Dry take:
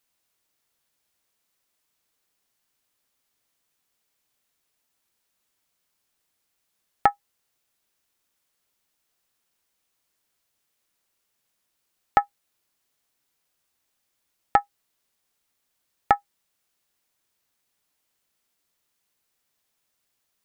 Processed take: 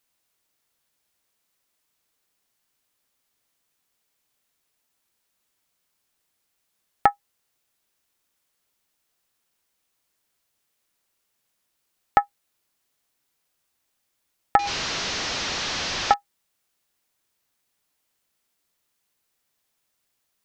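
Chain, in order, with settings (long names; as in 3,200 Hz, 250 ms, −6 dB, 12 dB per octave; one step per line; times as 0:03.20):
0:14.59–0:16.14: linear delta modulator 32 kbit/s, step −22 dBFS
level +1 dB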